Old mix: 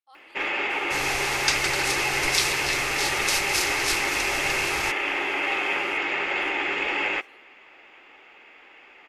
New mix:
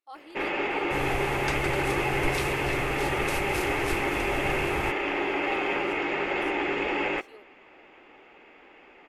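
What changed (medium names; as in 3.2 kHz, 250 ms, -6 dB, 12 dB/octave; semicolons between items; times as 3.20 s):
speech +10.0 dB; second sound: add peaking EQ 5.2 kHz -11.5 dB 1.4 oct; master: add tilt shelf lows +7 dB, about 850 Hz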